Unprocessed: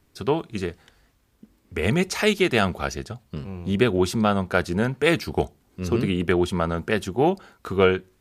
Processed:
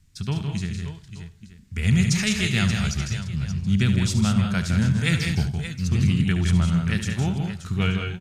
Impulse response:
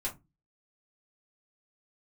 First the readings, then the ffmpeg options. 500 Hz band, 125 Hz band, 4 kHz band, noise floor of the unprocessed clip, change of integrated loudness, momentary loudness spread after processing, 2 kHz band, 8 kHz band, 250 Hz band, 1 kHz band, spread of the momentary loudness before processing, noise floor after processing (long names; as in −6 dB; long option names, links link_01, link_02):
−14.5 dB, +8.0 dB, +1.5 dB, −64 dBFS, +0.5 dB, 9 LU, −1.5 dB, +5.5 dB, +1.0 dB, −9.5 dB, 12 LU, −48 dBFS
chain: -filter_complex "[0:a]firequalizer=gain_entry='entry(150,0);entry(350,-23);entry(500,-24);entry(1800,-10);entry(7000,-1);entry(12000,-12)':delay=0.05:min_phase=1,aecho=1:1:71|161|196|576|578|879:0.299|0.473|0.398|0.126|0.266|0.119,asplit=2[link_01][link_02];[1:a]atrim=start_sample=2205,asetrate=48510,aresample=44100,adelay=85[link_03];[link_02][link_03]afir=irnorm=-1:irlink=0,volume=-20dB[link_04];[link_01][link_04]amix=inputs=2:normalize=0,volume=6.5dB"